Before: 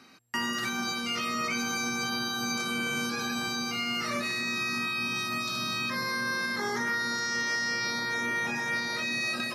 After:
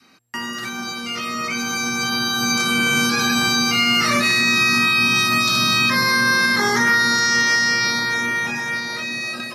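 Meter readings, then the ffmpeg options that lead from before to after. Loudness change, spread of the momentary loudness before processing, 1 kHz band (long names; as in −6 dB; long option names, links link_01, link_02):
+12.5 dB, 2 LU, +11.0 dB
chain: -af "dynaudnorm=framelen=490:gausssize=9:maxgain=12.5dB,adynamicequalizer=threshold=0.02:dfrequency=510:dqfactor=0.74:tfrequency=510:tqfactor=0.74:attack=5:release=100:ratio=0.375:range=2.5:mode=cutabove:tftype=bell,volume=2.5dB"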